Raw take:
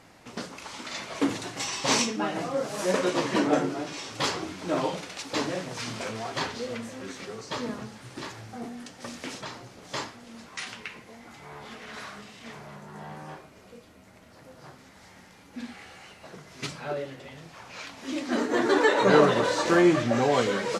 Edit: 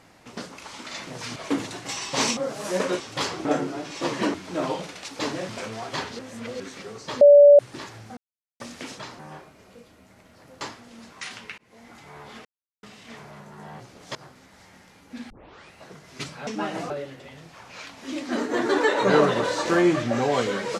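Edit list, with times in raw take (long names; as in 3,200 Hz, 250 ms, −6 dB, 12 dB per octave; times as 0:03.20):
0:02.08–0:02.51: move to 0:16.90
0:03.14–0:03.47: swap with 0:04.03–0:04.48
0:05.63–0:05.92: move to 0:01.07
0:06.62–0:07.03: reverse
0:07.64–0:08.02: beep over 577 Hz −7.5 dBFS
0:08.60–0:09.03: silence
0:09.62–0:09.97: swap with 0:13.16–0:14.58
0:10.94–0:11.22: fade in
0:11.81–0:12.19: silence
0:15.73: tape start 0.44 s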